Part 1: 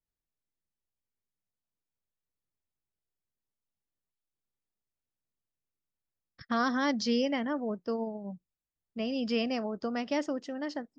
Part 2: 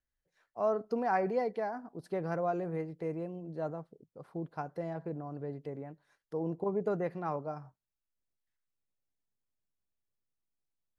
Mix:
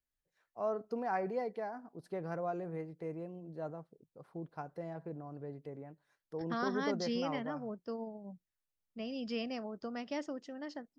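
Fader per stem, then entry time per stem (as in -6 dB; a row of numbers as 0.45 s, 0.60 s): -8.0 dB, -5.0 dB; 0.00 s, 0.00 s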